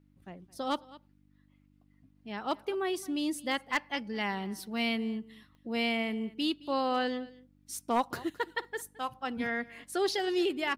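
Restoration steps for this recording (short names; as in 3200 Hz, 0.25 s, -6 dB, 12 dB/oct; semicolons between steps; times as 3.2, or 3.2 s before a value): clip repair -19.5 dBFS; de-click; de-hum 49.4 Hz, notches 6; inverse comb 0.217 s -20.5 dB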